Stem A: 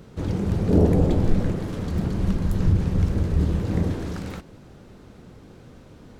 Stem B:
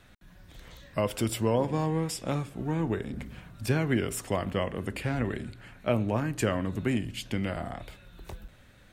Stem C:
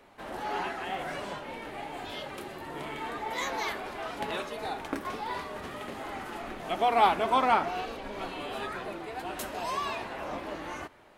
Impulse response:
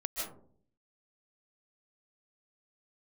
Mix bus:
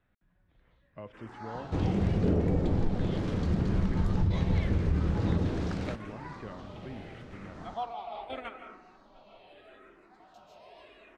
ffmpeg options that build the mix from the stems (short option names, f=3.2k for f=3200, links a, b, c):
-filter_complex "[0:a]acompressor=threshold=-21dB:ratio=6,adelay=1550,volume=-1.5dB[a];[1:a]lowpass=2.2k,volume=-16.5dB,asplit=2[b][c];[2:a]asplit=2[d][e];[e]afreqshift=-0.81[f];[d][f]amix=inputs=2:normalize=1,adelay=950,volume=-10.5dB,asplit=2[g][h];[h]volume=-9dB[i];[c]apad=whole_len=534810[j];[g][j]sidechaingate=range=-33dB:threshold=-58dB:ratio=16:detection=peak[k];[3:a]atrim=start_sample=2205[l];[i][l]afir=irnorm=-1:irlink=0[m];[a][b][k][m]amix=inputs=4:normalize=0,lowpass=5.7k"